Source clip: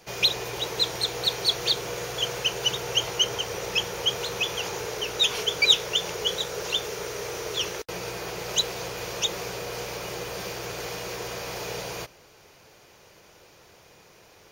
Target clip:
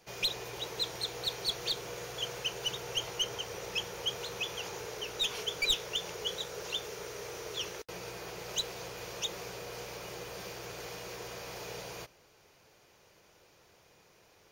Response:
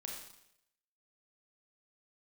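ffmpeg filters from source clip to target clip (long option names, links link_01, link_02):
-af "aeval=exprs='clip(val(0),-1,0.133)':channel_layout=same,volume=-9dB"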